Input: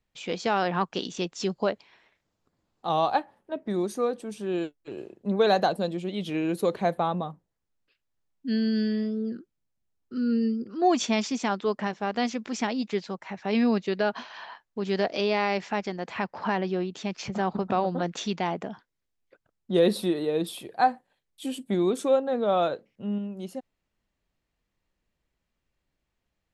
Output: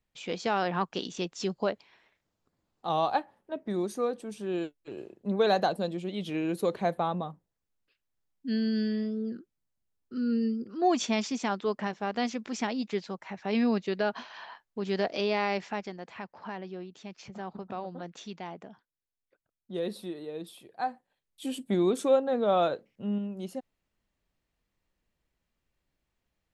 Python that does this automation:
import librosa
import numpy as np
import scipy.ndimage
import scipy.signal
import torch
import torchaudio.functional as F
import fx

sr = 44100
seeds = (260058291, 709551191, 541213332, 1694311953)

y = fx.gain(x, sr, db=fx.line((15.55, -3.0), (16.29, -12.0), (20.68, -12.0), (21.56, -1.0)))